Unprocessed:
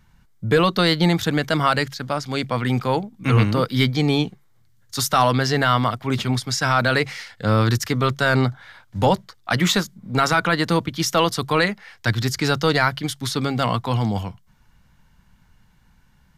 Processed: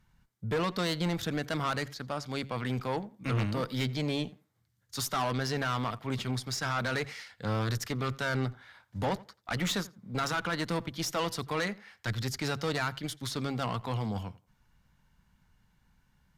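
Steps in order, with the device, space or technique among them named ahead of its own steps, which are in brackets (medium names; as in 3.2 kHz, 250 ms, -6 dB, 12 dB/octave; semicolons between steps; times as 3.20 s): rockabilly slapback (valve stage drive 16 dB, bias 0.4; tape echo 86 ms, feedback 22%, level -19 dB, low-pass 2.4 kHz); trim -8.5 dB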